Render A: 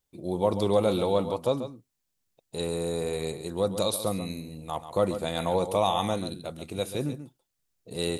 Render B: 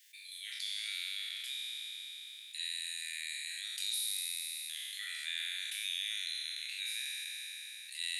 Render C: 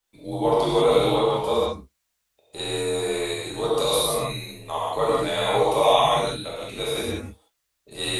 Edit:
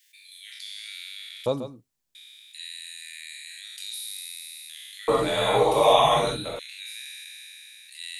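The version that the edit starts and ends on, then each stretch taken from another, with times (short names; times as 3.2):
B
1.46–2.15 from A
5.08–6.59 from C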